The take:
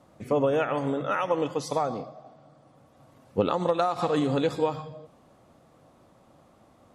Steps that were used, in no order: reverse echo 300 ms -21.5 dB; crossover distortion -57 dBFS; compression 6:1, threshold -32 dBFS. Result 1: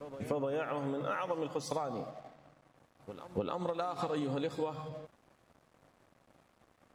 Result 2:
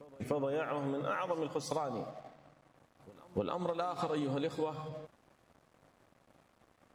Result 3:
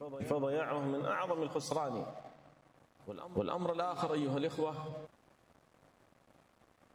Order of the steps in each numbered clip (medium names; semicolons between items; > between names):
reverse echo > crossover distortion > compression; crossover distortion > compression > reverse echo; crossover distortion > reverse echo > compression